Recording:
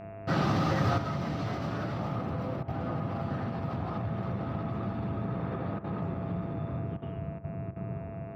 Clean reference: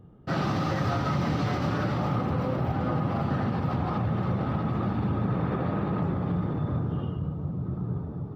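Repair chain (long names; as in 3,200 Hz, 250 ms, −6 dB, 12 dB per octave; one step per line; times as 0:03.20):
hum removal 102.4 Hz, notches 27
notch filter 670 Hz, Q 30
repair the gap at 0:02.63/0:05.79/0:06.97/0:07.39/0:07.71, 49 ms
level 0 dB, from 0:00.98 +6.5 dB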